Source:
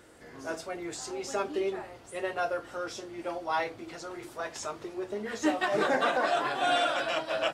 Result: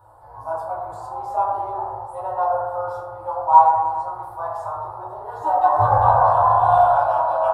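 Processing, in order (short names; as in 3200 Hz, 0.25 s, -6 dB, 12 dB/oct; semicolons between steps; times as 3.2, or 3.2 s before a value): 5.78–6.82 octaver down 2 oct, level -1 dB; EQ curve 110 Hz 0 dB, 200 Hz -24 dB, 320 Hz -24 dB, 920 Hz +13 dB, 2100 Hz -29 dB, 4100 Hz -17 dB, 6300 Hz -25 dB, 11000 Hz -5 dB; reverb RT60 1.6 s, pre-delay 4 ms, DRR -7 dB; gain +1 dB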